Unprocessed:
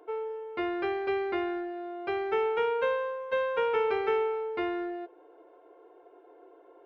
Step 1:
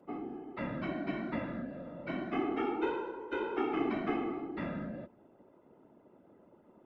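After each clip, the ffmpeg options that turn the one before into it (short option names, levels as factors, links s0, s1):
-af "afftfilt=real='hypot(re,im)*cos(2*PI*random(0))':imag='hypot(re,im)*sin(2*PI*random(1))':win_size=512:overlap=0.75,afreqshift=-120"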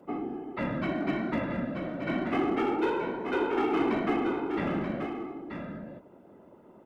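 -filter_complex "[0:a]asplit=2[s0][s1];[s1]aeval=exprs='0.0266*(abs(mod(val(0)/0.0266+3,4)-2)-1)':c=same,volume=0.335[s2];[s0][s2]amix=inputs=2:normalize=0,aecho=1:1:932:0.447,volume=1.58"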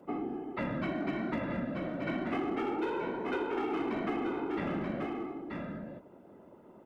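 -af "acompressor=threshold=0.0355:ratio=6,volume=0.891"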